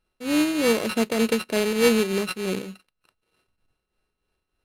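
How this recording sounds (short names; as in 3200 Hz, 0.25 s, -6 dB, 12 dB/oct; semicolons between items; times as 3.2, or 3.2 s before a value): a buzz of ramps at a fixed pitch in blocks of 16 samples; tremolo triangle 3.3 Hz, depth 60%; aliases and images of a low sample rate 6800 Hz, jitter 0%; Vorbis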